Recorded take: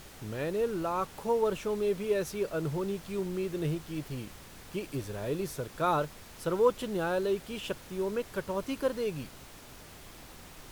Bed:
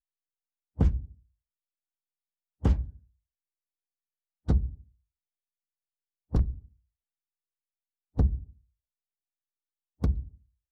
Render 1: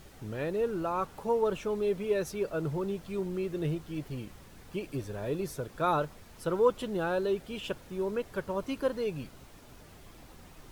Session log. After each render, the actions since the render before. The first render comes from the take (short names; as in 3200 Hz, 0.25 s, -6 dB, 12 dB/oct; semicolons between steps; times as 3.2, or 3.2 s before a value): denoiser 7 dB, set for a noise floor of -50 dBFS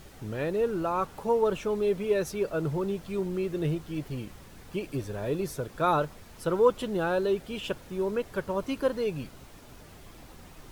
gain +3 dB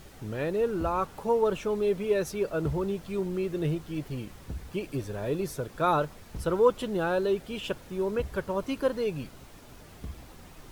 add bed -14 dB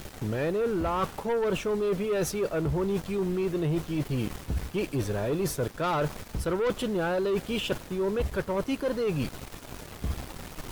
sample leveller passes 3; reverse; compressor, threshold -26 dBFS, peak gain reduction 11.5 dB; reverse